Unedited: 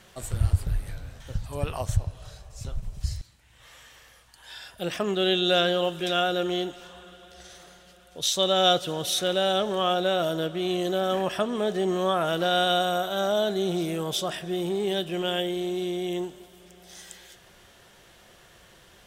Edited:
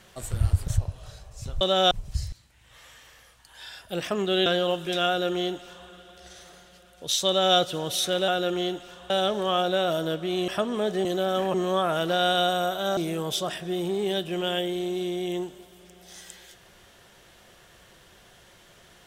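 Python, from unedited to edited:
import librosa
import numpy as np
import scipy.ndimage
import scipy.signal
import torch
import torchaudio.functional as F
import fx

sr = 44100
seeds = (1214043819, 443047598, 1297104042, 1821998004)

y = fx.edit(x, sr, fx.cut(start_s=0.68, length_s=1.19),
    fx.cut(start_s=5.35, length_s=0.25),
    fx.duplicate(start_s=6.21, length_s=0.82, to_s=9.42),
    fx.duplicate(start_s=8.41, length_s=0.3, to_s=2.8),
    fx.move(start_s=10.8, length_s=0.49, to_s=11.86),
    fx.cut(start_s=13.29, length_s=0.49), tone=tone)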